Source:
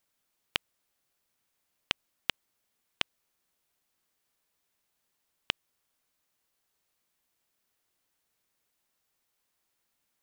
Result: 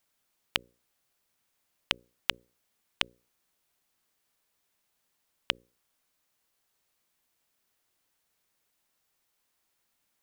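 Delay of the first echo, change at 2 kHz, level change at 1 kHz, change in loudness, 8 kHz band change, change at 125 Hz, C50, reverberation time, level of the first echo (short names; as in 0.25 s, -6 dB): none, +2.0 dB, +2.0 dB, +2.0 dB, +2.0 dB, +1.5 dB, none, none, none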